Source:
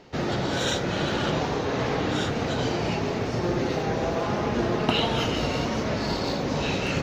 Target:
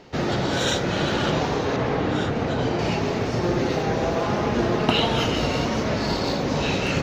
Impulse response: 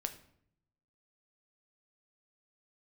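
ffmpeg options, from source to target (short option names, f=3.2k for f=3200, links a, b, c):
-filter_complex "[0:a]asettb=1/sr,asplit=3[a][b][c];[a]atrim=end=1.764[d];[b]atrim=start=1.76:end=2.79,asetpts=PTS-STARTPTS,afade=t=in:d=0.004:c=qsin,afade=t=out:st=1.026:d=0.004:c=qsin,highshelf=f=3.3k:g=-10[e];[c]atrim=start=2.786[f];[d][e]acrossfade=d=0.004:c1=hsin:c2=qsin[g];[g][f]acrossfade=d=0.004:c1=qsin:c2=hsin,volume=3dB"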